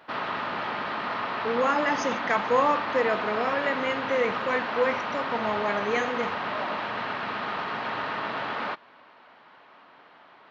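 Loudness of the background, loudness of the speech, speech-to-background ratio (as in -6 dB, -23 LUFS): -30.5 LUFS, -27.5 LUFS, 3.0 dB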